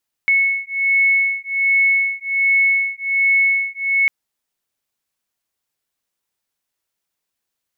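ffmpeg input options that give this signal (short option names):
-f lavfi -i "aevalsrc='0.141*(sin(2*PI*2200*t)+sin(2*PI*2201.3*t))':d=3.8:s=44100"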